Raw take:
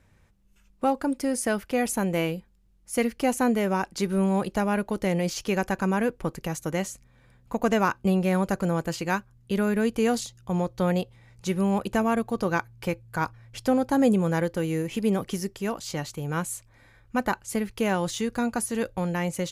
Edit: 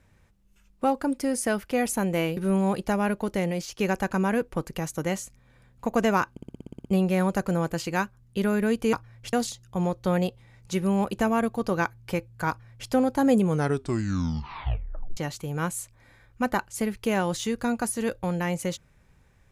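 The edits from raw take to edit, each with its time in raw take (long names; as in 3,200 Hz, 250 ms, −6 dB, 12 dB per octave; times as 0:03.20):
0:02.37–0:04.05: remove
0:04.96–0:05.47: fade out, to −7 dB
0:07.99: stutter 0.06 s, 10 plays
0:13.23–0:13.63: duplicate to 0:10.07
0:14.17: tape stop 1.74 s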